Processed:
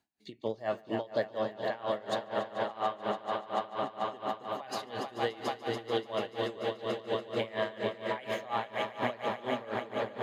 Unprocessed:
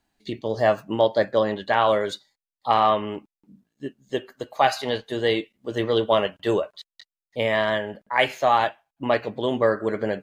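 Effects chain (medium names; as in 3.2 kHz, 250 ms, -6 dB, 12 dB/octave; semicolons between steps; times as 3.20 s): high-pass 93 Hz; on a send: echo with a slow build-up 145 ms, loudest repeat 5, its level -9 dB; on the sum: compression, threshold -20 dBFS, peak gain reduction 8.5 dB; logarithmic tremolo 4.2 Hz, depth 20 dB; trim -4.5 dB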